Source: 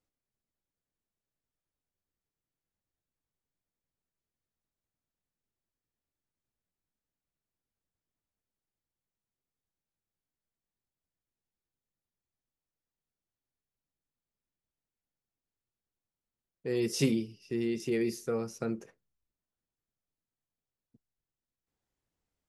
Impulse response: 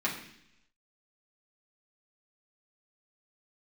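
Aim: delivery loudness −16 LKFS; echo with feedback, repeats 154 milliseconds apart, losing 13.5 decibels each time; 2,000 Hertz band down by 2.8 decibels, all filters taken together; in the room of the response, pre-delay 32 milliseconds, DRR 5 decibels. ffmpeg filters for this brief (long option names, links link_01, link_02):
-filter_complex "[0:a]equalizer=frequency=2000:width_type=o:gain=-3.5,aecho=1:1:154|308:0.211|0.0444,asplit=2[link_01][link_02];[1:a]atrim=start_sample=2205,adelay=32[link_03];[link_02][link_03]afir=irnorm=-1:irlink=0,volume=-13dB[link_04];[link_01][link_04]amix=inputs=2:normalize=0,volume=15dB"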